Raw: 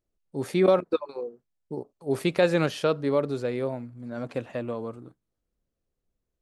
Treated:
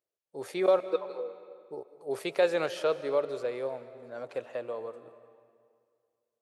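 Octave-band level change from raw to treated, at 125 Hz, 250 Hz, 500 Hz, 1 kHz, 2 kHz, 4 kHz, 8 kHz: −18.5 dB, −11.5 dB, −3.0 dB, −3.5 dB, −4.5 dB, −4.5 dB, can't be measured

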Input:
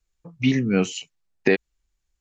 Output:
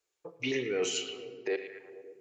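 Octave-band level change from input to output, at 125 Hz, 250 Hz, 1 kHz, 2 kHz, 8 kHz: −22.0 dB, −16.5 dB, −10.0 dB, −9.0 dB, can't be measured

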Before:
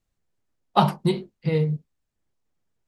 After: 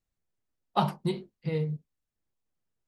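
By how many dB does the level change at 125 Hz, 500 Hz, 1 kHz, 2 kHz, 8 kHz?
−7.5 dB, −7.5 dB, −7.5 dB, −7.5 dB, can't be measured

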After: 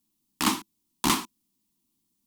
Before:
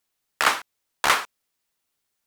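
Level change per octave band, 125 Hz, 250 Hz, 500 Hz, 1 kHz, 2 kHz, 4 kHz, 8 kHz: +10.5, +14.5, −6.0, −6.0, −11.0, −3.0, +0.5 decibels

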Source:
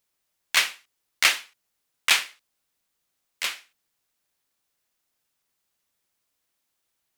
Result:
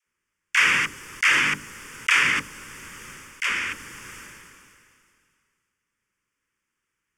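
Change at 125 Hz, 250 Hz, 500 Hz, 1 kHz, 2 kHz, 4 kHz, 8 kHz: can't be measured, +16.5 dB, +3.5 dB, +6.0 dB, +6.5 dB, −2.0 dB, −2.0 dB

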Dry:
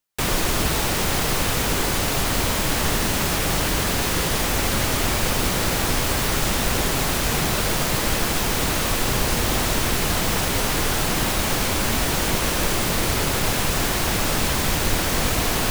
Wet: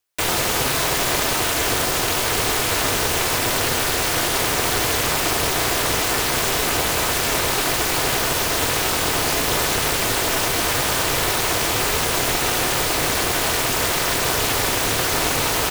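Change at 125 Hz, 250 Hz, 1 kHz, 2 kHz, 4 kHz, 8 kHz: −3.5, −2.5, +3.0, +3.0, +3.0, +3.0 decibels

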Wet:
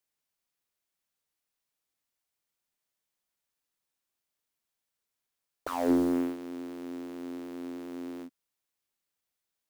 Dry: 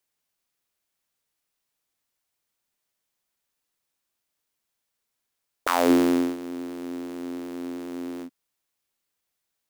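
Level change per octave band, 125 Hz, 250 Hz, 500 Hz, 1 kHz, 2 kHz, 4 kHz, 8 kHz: −4.5, −5.5, −7.0, −9.5, −13.0, −13.5, −12.0 decibels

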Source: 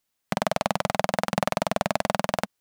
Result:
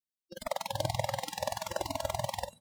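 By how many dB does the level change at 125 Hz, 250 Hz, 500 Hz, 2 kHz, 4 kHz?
−5.0, −16.0, −8.5, −12.0, −5.5 decibels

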